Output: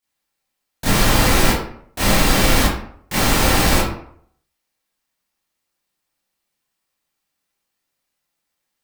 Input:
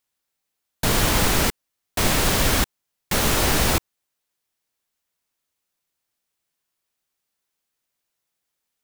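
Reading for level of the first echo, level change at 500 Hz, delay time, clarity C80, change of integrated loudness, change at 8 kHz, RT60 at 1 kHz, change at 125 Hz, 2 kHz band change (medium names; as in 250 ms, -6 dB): no echo, +4.0 dB, no echo, 6.0 dB, +3.5 dB, +2.0 dB, 0.65 s, +4.5 dB, +4.5 dB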